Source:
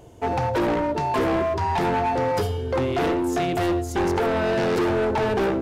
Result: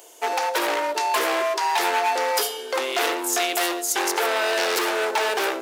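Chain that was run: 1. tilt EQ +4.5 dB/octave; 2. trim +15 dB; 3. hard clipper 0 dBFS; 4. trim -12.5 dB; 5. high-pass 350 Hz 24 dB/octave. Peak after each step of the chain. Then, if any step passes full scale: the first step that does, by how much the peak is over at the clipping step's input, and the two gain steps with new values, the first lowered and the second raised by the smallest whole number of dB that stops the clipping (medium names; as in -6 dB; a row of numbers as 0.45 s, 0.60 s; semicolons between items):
-8.0 dBFS, +7.0 dBFS, 0.0 dBFS, -12.5 dBFS, -8.5 dBFS; step 2, 7.0 dB; step 2 +8 dB, step 4 -5.5 dB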